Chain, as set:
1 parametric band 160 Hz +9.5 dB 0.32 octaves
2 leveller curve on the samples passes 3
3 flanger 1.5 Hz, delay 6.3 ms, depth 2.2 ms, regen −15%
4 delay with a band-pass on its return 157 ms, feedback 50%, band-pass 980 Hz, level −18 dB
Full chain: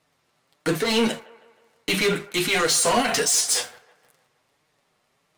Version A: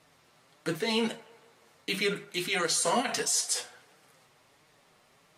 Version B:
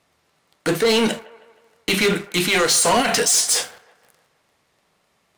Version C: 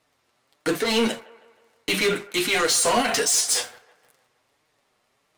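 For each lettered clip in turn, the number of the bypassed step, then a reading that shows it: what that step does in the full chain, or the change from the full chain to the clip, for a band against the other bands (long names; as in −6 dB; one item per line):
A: 2, change in crest factor +6.5 dB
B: 3, change in integrated loudness +3.5 LU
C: 1, 125 Hz band −5.0 dB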